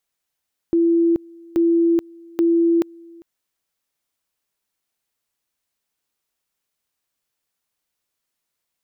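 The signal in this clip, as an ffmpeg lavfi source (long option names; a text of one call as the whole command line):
ffmpeg -f lavfi -i "aevalsrc='pow(10,(-13-26.5*gte(mod(t,0.83),0.43))/20)*sin(2*PI*336*t)':duration=2.49:sample_rate=44100" out.wav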